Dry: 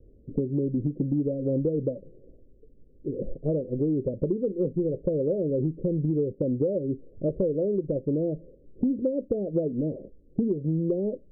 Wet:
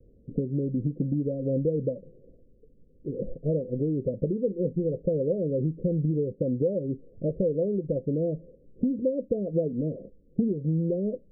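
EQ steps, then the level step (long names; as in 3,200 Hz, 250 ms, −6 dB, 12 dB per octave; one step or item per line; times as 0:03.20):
Chebyshev low-pass with heavy ripple 710 Hz, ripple 6 dB
+2.0 dB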